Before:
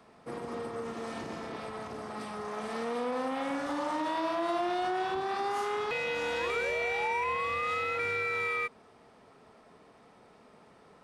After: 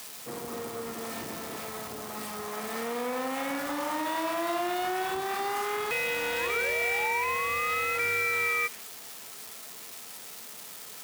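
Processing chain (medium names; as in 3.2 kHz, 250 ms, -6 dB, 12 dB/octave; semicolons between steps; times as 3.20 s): zero-crossing glitches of -30.5 dBFS; dynamic bell 2.1 kHz, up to +5 dB, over -45 dBFS, Q 1.3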